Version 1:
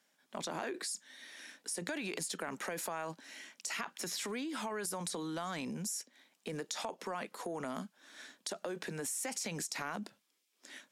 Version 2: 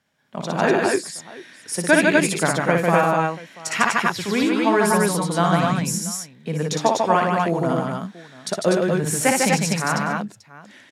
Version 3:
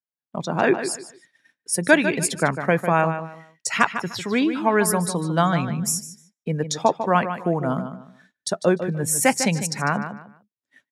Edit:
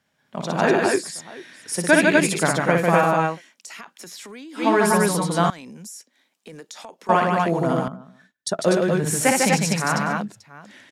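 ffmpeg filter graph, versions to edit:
-filter_complex "[0:a]asplit=2[a][b];[1:a]asplit=4[c][d][e][f];[c]atrim=end=3.42[g];[a]atrim=start=3.32:end=4.66[h];[d]atrim=start=4.56:end=5.502[i];[b]atrim=start=5.498:end=7.092[j];[e]atrim=start=7.088:end=7.882[k];[2:a]atrim=start=7.878:end=8.592[l];[f]atrim=start=8.588[m];[g][h]acrossfade=d=0.1:c1=tri:c2=tri[n];[n][i]acrossfade=d=0.1:c1=tri:c2=tri[o];[o][j]acrossfade=d=0.004:c1=hsin:c2=hsin[p];[p][k]acrossfade=d=0.004:c1=hsin:c2=hsin[q];[q][l]acrossfade=d=0.004:c1=hsin:c2=hsin[r];[r][m]acrossfade=d=0.004:c1=hsin:c2=hsin"

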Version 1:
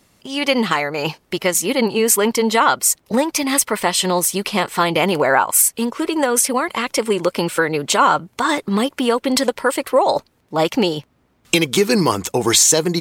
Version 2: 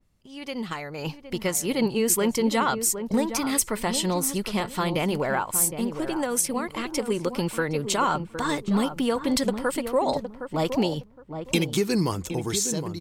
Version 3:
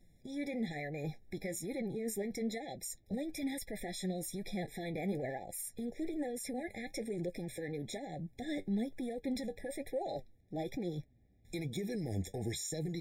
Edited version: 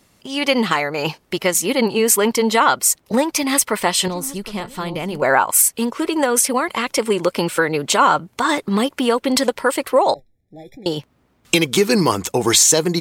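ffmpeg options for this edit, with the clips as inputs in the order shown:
-filter_complex "[0:a]asplit=3[a][b][c];[a]atrim=end=4.082[d];[1:a]atrim=start=4.078:end=5.222[e];[b]atrim=start=5.218:end=10.142[f];[2:a]atrim=start=10.138:end=10.862[g];[c]atrim=start=10.858[h];[d][e]acrossfade=d=0.004:c1=hsin:c2=hsin[i];[i][f]acrossfade=d=0.004:c1=hsin:c2=hsin[j];[j][g]acrossfade=d=0.004:c1=hsin:c2=hsin[k];[k][h]acrossfade=d=0.004:c1=hsin:c2=hsin"

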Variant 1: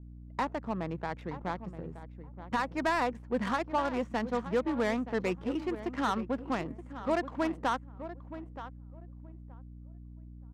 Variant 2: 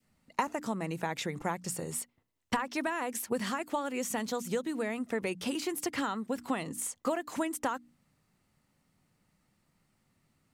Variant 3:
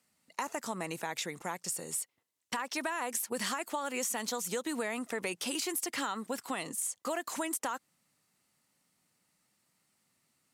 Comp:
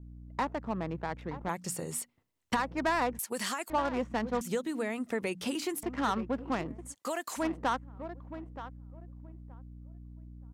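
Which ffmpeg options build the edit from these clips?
-filter_complex "[1:a]asplit=2[a][b];[2:a]asplit=2[c][d];[0:a]asplit=5[e][f][g][h][i];[e]atrim=end=1.492[j];[a]atrim=start=1.488:end=2.552[k];[f]atrim=start=2.548:end=3.192[l];[c]atrim=start=3.188:end=3.702[m];[g]atrim=start=3.698:end=4.412[n];[b]atrim=start=4.408:end=5.832[o];[h]atrim=start=5.828:end=6.95[p];[d]atrim=start=6.85:end=7.45[q];[i]atrim=start=7.35[r];[j][k]acrossfade=d=0.004:c1=hsin:c2=hsin[s];[s][l]acrossfade=d=0.004:c1=hsin:c2=hsin[t];[t][m]acrossfade=d=0.004:c1=hsin:c2=hsin[u];[u][n]acrossfade=d=0.004:c1=hsin:c2=hsin[v];[v][o]acrossfade=d=0.004:c1=hsin:c2=hsin[w];[w][p]acrossfade=d=0.004:c1=hsin:c2=hsin[x];[x][q]acrossfade=d=0.1:c1=tri:c2=tri[y];[y][r]acrossfade=d=0.1:c1=tri:c2=tri"

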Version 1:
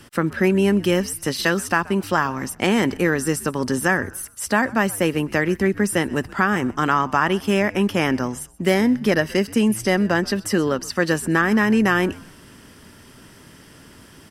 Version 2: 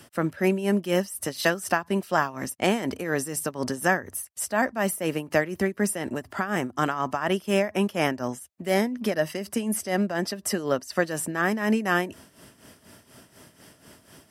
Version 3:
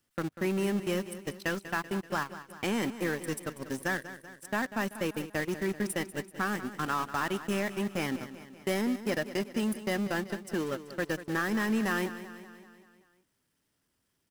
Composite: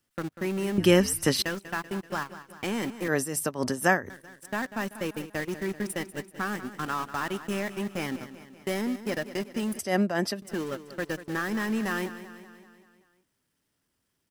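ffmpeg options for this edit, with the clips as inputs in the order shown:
-filter_complex "[1:a]asplit=2[a][b];[2:a]asplit=4[c][d][e][f];[c]atrim=end=0.782[g];[0:a]atrim=start=0.778:end=1.422[h];[d]atrim=start=1.418:end=3.082[i];[a]atrim=start=3.078:end=4.102[j];[e]atrim=start=4.098:end=9.792[k];[b]atrim=start=9.788:end=10.422[l];[f]atrim=start=10.418[m];[g][h]acrossfade=d=0.004:c1=hsin:c2=hsin[n];[n][i]acrossfade=d=0.004:c1=hsin:c2=hsin[o];[o][j]acrossfade=d=0.004:c1=hsin:c2=hsin[p];[p][k]acrossfade=d=0.004:c1=hsin:c2=hsin[q];[q][l]acrossfade=d=0.004:c1=hsin:c2=hsin[r];[r][m]acrossfade=d=0.004:c1=hsin:c2=hsin"

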